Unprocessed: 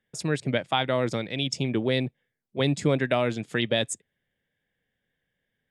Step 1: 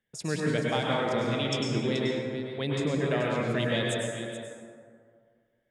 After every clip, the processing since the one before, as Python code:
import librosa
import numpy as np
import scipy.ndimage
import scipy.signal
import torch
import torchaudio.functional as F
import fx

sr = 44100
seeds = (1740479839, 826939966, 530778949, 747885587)

y = fx.rider(x, sr, range_db=10, speed_s=0.5)
y = y + 10.0 ** (-11.0 / 20.0) * np.pad(y, (int(430 * sr / 1000.0), 0))[:len(y)]
y = fx.rev_plate(y, sr, seeds[0], rt60_s=2.0, hf_ratio=0.4, predelay_ms=90, drr_db=-3.5)
y = y * librosa.db_to_amplitude(-6.5)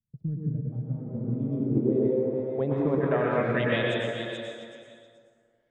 y = fx.transient(x, sr, attack_db=6, sustain_db=0)
y = fx.echo_stepped(y, sr, ms=116, hz=400.0, octaves=0.7, feedback_pct=70, wet_db=-2.5)
y = fx.filter_sweep_lowpass(y, sr, from_hz=130.0, to_hz=4700.0, start_s=0.88, end_s=4.46, q=1.5)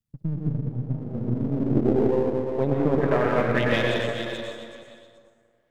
y = np.where(x < 0.0, 10.0 ** (-7.0 / 20.0) * x, x)
y = y * librosa.db_to_amplitude(5.5)